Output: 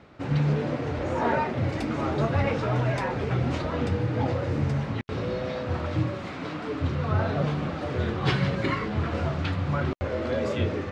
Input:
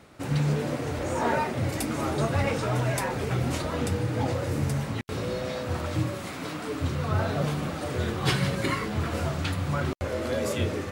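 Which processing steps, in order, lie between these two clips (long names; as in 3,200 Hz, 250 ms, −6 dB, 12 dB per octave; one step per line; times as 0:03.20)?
high-frequency loss of the air 170 metres
level +1.5 dB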